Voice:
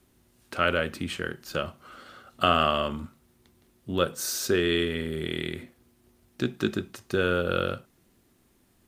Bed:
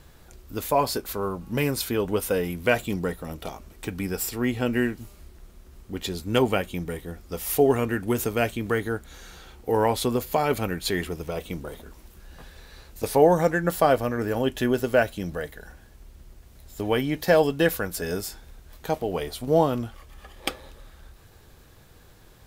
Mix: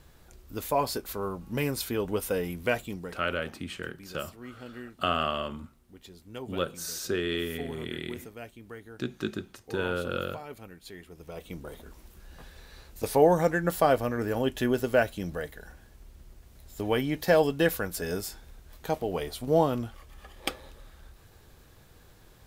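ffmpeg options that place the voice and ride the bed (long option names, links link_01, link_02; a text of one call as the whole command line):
ffmpeg -i stem1.wav -i stem2.wav -filter_complex "[0:a]adelay=2600,volume=-5.5dB[link_01];[1:a]volume=11.5dB,afade=type=out:start_time=2.6:duration=0.66:silence=0.188365,afade=type=in:start_time=11.07:duration=0.84:silence=0.158489[link_02];[link_01][link_02]amix=inputs=2:normalize=0" out.wav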